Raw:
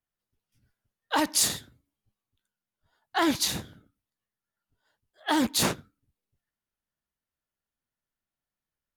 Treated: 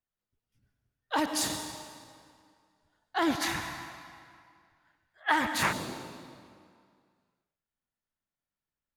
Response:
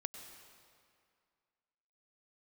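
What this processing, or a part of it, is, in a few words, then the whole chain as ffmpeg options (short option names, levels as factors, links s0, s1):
swimming-pool hall: -filter_complex "[1:a]atrim=start_sample=2205[s0];[0:a][s0]afir=irnorm=-1:irlink=0,highshelf=f=4200:g=-7,asettb=1/sr,asplit=3[s1][s2][s3];[s1]atrim=end=3.414[s4];[s2]atrim=start=3.41:end=5.73,asetpts=PTS-STARTPTS,afade=t=in:d=0.004:c=qsin,afade=t=out:st=2.316:d=0.004:c=qsin,equalizer=f=250:t=o:w=1:g=-7,equalizer=f=500:t=o:w=1:g=-5,equalizer=f=1000:t=o:w=1:g=5,equalizer=f=2000:t=o:w=1:g=10,equalizer=f=4000:t=o:w=1:g=-4[s5];[s3]atrim=start=5.726[s6];[s4][s5]acrossfade=d=0.004:c1=hsin:c2=qsin[s7];[s7][s6]acrossfade=d=0.004:c1=qsin:c2=hsin"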